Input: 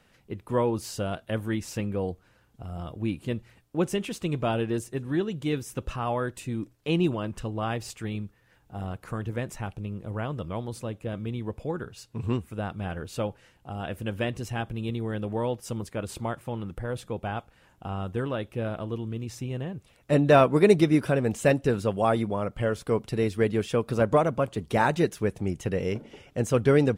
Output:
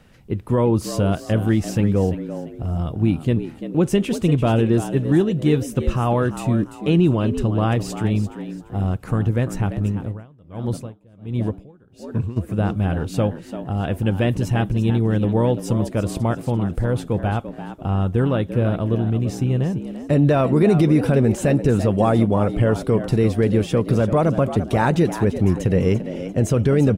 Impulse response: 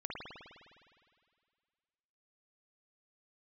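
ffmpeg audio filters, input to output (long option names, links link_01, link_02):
-filter_complex "[0:a]lowshelf=frequency=370:gain=9.5,alimiter=limit=-12.5dB:level=0:latency=1:release=45,asplit=4[link_01][link_02][link_03][link_04];[link_02]adelay=342,afreqshift=78,volume=-11.5dB[link_05];[link_03]adelay=684,afreqshift=156,volume=-21.1dB[link_06];[link_04]adelay=1026,afreqshift=234,volume=-30.8dB[link_07];[link_01][link_05][link_06][link_07]amix=inputs=4:normalize=0,asplit=3[link_08][link_09][link_10];[link_08]afade=type=out:start_time=9.91:duration=0.02[link_11];[link_09]aeval=exprs='val(0)*pow(10,-30*(0.5-0.5*cos(2*PI*1.4*n/s))/20)':channel_layout=same,afade=type=in:start_time=9.91:duration=0.02,afade=type=out:start_time=12.36:duration=0.02[link_12];[link_10]afade=type=in:start_time=12.36:duration=0.02[link_13];[link_11][link_12][link_13]amix=inputs=3:normalize=0,volume=5dB"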